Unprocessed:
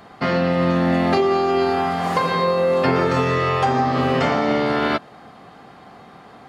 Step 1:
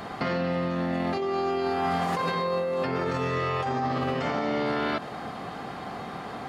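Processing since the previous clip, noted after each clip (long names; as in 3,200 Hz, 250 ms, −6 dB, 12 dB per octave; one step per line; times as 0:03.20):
compressor whose output falls as the input rises −26 dBFS, ratio −1
brickwall limiter −18.5 dBFS, peak gain reduction 5.5 dB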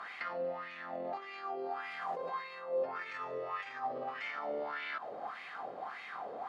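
high-shelf EQ 3,100 Hz +11 dB
downward compressor, threshold −28 dBFS, peak gain reduction 6 dB
LFO wah 1.7 Hz 510–2,300 Hz, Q 4.1
level +1 dB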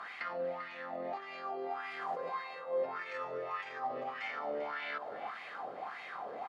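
single-tap delay 394 ms −12.5 dB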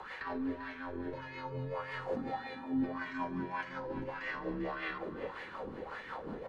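rotating-speaker cabinet horn 5.5 Hz
frequency shifter −260 Hz
on a send at −12 dB: convolution reverb RT60 1.2 s, pre-delay 7 ms
on the sum: level +3.5 dB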